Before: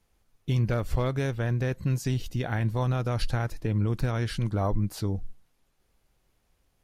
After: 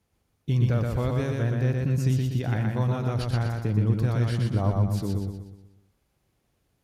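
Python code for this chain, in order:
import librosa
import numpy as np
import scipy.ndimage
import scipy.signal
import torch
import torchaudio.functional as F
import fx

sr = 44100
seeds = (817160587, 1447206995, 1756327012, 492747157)

p1 = scipy.signal.sosfilt(scipy.signal.butter(2, 73.0, 'highpass', fs=sr, output='sos'), x)
p2 = fx.low_shelf(p1, sr, hz=360.0, db=6.5)
p3 = p2 + fx.echo_feedback(p2, sr, ms=122, feedback_pct=45, wet_db=-3.0, dry=0)
y = p3 * librosa.db_to_amplitude(-3.5)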